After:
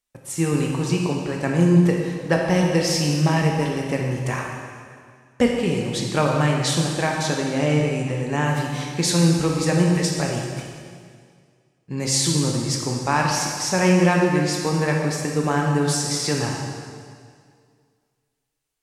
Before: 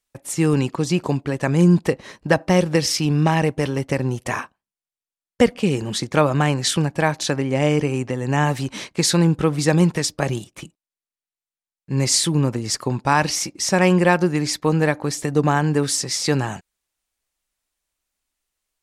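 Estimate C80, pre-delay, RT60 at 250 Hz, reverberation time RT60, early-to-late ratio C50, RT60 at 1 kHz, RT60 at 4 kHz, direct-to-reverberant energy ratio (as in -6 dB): 3.0 dB, 6 ms, 2.0 s, 2.0 s, 1.5 dB, 2.0 s, 1.9 s, -0.5 dB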